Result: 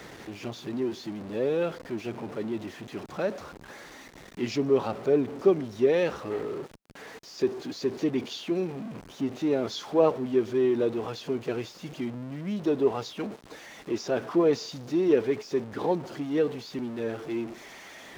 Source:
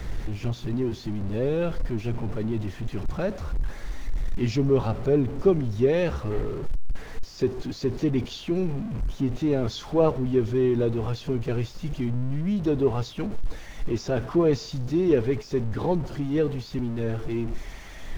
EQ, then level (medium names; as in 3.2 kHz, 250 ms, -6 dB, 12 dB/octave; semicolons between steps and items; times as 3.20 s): high-pass 270 Hz 12 dB/octave; 0.0 dB